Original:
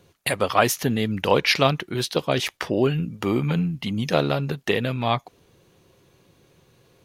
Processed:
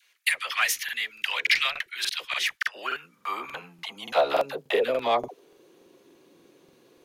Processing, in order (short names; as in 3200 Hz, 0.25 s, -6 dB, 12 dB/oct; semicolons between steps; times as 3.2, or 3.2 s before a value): high-pass sweep 2000 Hz -> 290 Hz, 2.16–5.87; in parallel at -8 dB: soft clip -20 dBFS, distortion -6 dB; on the sum: dispersion lows, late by 65 ms, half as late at 620 Hz; crackling interface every 0.29 s, samples 2048, repeat, from 0.84; gain -4.5 dB